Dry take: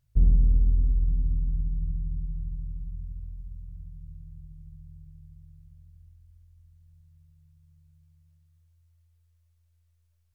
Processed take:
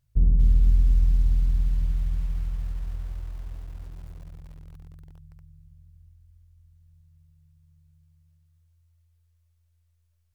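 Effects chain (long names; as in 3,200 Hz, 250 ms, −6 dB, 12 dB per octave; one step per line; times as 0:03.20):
feedback echo at a low word length 236 ms, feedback 55%, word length 7 bits, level −11 dB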